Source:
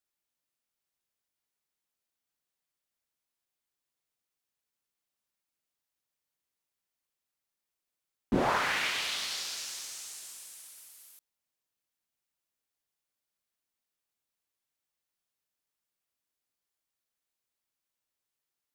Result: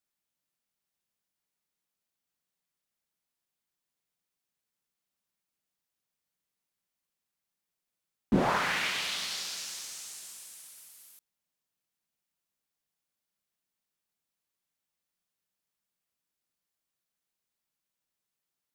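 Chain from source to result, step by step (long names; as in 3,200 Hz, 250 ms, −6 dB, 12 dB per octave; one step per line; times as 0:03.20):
parametric band 180 Hz +7.5 dB 0.53 octaves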